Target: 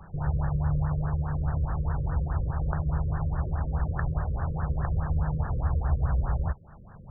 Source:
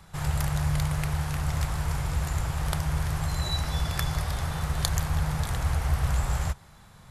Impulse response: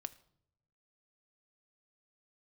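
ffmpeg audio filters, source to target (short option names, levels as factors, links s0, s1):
-filter_complex "[0:a]asplit=2[s0][s1];[s1]acompressor=threshold=0.0141:ratio=16,volume=1.19[s2];[s0][s2]amix=inputs=2:normalize=0,lowpass=5100,afftfilt=real='re*lt(b*sr/1024,550*pow(1900/550,0.5+0.5*sin(2*PI*4.8*pts/sr)))':imag='im*lt(b*sr/1024,550*pow(1900/550,0.5+0.5*sin(2*PI*4.8*pts/sr)))':win_size=1024:overlap=0.75,volume=0.841"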